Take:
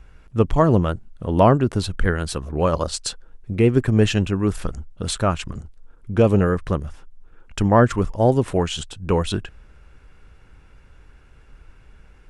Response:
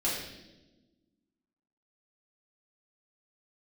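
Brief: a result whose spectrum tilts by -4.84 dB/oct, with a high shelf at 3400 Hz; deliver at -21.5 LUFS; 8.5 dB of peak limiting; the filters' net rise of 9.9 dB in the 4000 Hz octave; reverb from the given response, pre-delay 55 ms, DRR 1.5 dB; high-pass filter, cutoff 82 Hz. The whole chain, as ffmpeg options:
-filter_complex "[0:a]highpass=82,highshelf=f=3.4k:g=8.5,equalizer=f=4k:t=o:g=6.5,alimiter=limit=-9dB:level=0:latency=1,asplit=2[a][b];[1:a]atrim=start_sample=2205,adelay=55[c];[b][c]afir=irnorm=-1:irlink=0,volume=-9dB[d];[a][d]amix=inputs=2:normalize=0,volume=-2.5dB"

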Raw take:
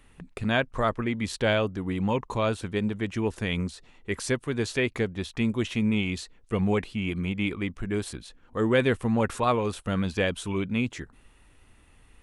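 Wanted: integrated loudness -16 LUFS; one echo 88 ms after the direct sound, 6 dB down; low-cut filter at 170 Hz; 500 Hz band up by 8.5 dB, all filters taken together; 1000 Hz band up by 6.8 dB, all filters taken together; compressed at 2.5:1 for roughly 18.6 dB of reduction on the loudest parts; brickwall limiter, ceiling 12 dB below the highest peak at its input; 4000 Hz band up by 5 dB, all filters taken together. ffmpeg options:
-af "highpass=170,equalizer=f=500:t=o:g=9,equalizer=f=1k:t=o:g=5.5,equalizer=f=4k:t=o:g=6,acompressor=threshold=-39dB:ratio=2.5,alimiter=level_in=7dB:limit=-24dB:level=0:latency=1,volume=-7dB,aecho=1:1:88:0.501,volume=25dB"

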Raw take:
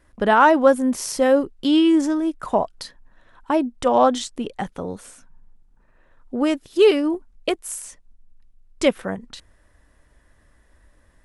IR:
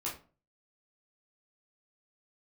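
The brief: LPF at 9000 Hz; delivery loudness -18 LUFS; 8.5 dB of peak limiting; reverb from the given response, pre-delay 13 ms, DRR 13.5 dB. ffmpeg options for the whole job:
-filter_complex "[0:a]lowpass=9k,alimiter=limit=-11.5dB:level=0:latency=1,asplit=2[a][b];[1:a]atrim=start_sample=2205,adelay=13[c];[b][c]afir=irnorm=-1:irlink=0,volume=-16dB[d];[a][d]amix=inputs=2:normalize=0,volume=5dB"

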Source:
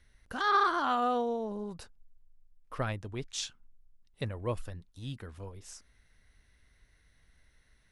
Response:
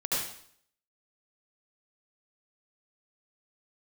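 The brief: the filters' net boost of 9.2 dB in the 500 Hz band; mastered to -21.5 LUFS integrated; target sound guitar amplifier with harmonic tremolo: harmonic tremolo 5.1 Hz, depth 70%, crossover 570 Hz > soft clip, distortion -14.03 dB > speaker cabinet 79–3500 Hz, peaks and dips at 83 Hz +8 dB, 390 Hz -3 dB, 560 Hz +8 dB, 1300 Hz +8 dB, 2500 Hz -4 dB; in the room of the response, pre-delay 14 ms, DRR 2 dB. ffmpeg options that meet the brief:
-filter_complex "[0:a]equalizer=f=500:t=o:g=7.5,asplit=2[a][b];[1:a]atrim=start_sample=2205,adelay=14[c];[b][c]afir=irnorm=-1:irlink=0,volume=-10dB[d];[a][d]amix=inputs=2:normalize=0,acrossover=split=570[e][f];[e]aeval=exprs='val(0)*(1-0.7/2+0.7/2*cos(2*PI*5.1*n/s))':c=same[g];[f]aeval=exprs='val(0)*(1-0.7/2-0.7/2*cos(2*PI*5.1*n/s))':c=same[h];[g][h]amix=inputs=2:normalize=0,asoftclip=threshold=-23dB,highpass=79,equalizer=f=83:t=q:w=4:g=8,equalizer=f=390:t=q:w=4:g=-3,equalizer=f=560:t=q:w=4:g=8,equalizer=f=1.3k:t=q:w=4:g=8,equalizer=f=2.5k:t=q:w=4:g=-4,lowpass=f=3.5k:w=0.5412,lowpass=f=3.5k:w=1.3066,volume=8.5dB"

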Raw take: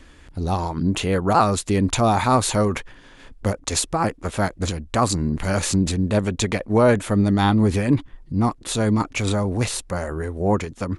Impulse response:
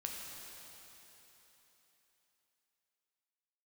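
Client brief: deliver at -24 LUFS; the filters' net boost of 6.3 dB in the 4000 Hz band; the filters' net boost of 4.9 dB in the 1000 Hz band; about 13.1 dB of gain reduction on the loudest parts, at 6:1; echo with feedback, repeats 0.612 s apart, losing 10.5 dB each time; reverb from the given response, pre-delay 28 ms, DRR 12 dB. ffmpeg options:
-filter_complex "[0:a]equalizer=f=1k:t=o:g=6,equalizer=f=4k:t=o:g=7,acompressor=threshold=-23dB:ratio=6,aecho=1:1:612|1224|1836:0.299|0.0896|0.0269,asplit=2[a][b];[1:a]atrim=start_sample=2205,adelay=28[c];[b][c]afir=irnorm=-1:irlink=0,volume=-12dB[d];[a][d]amix=inputs=2:normalize=0,volume=3dB"

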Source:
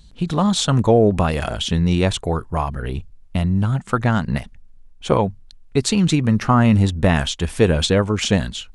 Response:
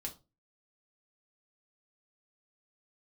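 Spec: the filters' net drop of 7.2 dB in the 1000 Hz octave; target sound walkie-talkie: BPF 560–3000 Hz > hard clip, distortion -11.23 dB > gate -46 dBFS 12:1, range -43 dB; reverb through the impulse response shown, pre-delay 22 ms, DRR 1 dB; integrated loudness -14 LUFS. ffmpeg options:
-filter_complex "[0:a]equalizer=f=1k:t=o:g=-9,asplit=2[a][b];[1:a]atrim=start_sample=2205,adelay=22[c];[b][c]afir=irnorm=-1:irlink=0,volume=1dB[d];[a][d]amix=inputs=2:normalize=0,highpass=560,lowpass=3k,asoftclip=type=hard:threshold=-19dB,agate=range=-43dB:threshold=-46dB:ratio=12,volume=13.5dB"

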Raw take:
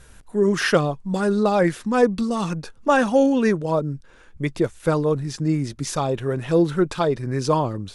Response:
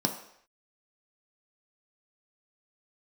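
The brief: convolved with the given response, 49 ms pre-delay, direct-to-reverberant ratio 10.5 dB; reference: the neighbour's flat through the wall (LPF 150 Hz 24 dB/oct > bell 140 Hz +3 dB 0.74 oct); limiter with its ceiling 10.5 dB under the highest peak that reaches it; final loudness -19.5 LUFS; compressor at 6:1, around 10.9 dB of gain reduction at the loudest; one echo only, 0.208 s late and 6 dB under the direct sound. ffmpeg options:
-filter_complex "[0:a]acompressor=threshold=-24dB:ratio=6,alimiter=level_in=0.5dB:limit=-24dB:level=0:latency=1,volume=-0.5dB,aecho=1:1:208:0.501,asplit=2[a][b];[1:a]atrim=start_sample=2205,adelay=49[c];[b][c]afir=irnorm=-1:irlink=0,volume=-18dB[d];[a][d]amix=inputs=2:normalize=0,lowpass=f=150:w=0.5412,lowpass=f=150:w=1.3066,equalizer=f=140:t=o:w=0.74:g=3,volume=16dB"

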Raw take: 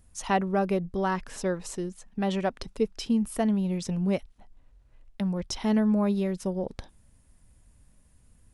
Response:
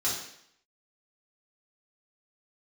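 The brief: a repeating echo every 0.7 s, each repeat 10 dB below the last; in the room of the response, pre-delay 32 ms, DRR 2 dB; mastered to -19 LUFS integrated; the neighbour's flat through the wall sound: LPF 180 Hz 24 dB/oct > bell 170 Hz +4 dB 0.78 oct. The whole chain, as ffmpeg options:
-filter_complex "[0:a]aecho=1:1:700|1400|2100|2800:0.316|0.101|0.0324|0.0104,asplit=2[a][b];[1:a]atrim=start_sample=2205,adelay=32[c];[b][c]afir=irnorm=-1:irlink=0,volume=-10dB[d];[a][d]amix=inputs=2:normalize=0,lowpass=f=180:w=0.5412,lowpass=f=180:w=1.3066,equalizer=f=170:t=o:w=0.78:g=4,volume=13dB"

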